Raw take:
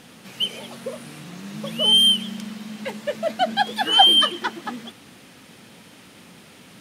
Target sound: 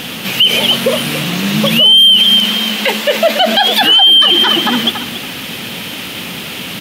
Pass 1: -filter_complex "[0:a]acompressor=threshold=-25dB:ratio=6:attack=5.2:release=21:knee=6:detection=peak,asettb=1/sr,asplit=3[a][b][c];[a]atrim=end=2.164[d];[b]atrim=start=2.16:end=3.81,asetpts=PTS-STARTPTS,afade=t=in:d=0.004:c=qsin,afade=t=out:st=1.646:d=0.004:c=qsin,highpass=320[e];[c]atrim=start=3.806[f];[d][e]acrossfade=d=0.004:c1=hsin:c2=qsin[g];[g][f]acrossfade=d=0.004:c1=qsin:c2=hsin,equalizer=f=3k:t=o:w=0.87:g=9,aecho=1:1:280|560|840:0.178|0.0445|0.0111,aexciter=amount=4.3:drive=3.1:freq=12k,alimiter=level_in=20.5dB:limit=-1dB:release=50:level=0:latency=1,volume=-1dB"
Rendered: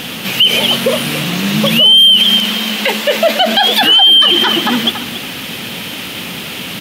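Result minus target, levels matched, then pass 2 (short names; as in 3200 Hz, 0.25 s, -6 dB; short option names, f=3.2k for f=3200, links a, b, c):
compressor: peak gain reduction +5.5 dB
-filter_complex "[0:a]acompressor=threshold=-18.5dB:ratio=6:attack=5.2:release=21:knee=6:detection=peak,asettb=1/sr,asplit=3[a][b][c];[a]atrim=end=2.164[d];[b]atrim=start=2.16:end=3.81,asetpts=PTS-STARTPTS,afade=t=in:d=0.004:c=qsin,afade=t=out:st=1.646:d=0.004:c=qsin,highpass=320[e];[c]atrim=start=3.806[f];[d][e]acrossfade=d=0.004:c1=hsin:c2=qsin[g];[g][f]acrossfade=d=0.004:c1=qsin:c2=hsin,equalizer=f=3k:t=o:w=0.87:g=9,aecho=1:1:280|560|840:0.178|0.0445|0.0111,aexciter=amount=4.3:drive=3.1:freq=12k,alimiter=level_in=20.5dB:limit=-1dB:release=50:level=0:latency=1,volume=-1dB"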